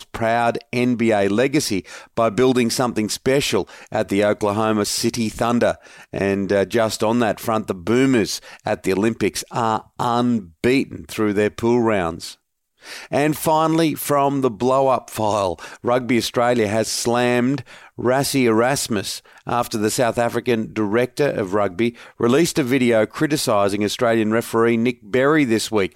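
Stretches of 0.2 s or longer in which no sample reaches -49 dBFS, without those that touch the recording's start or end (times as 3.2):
12.35–12.8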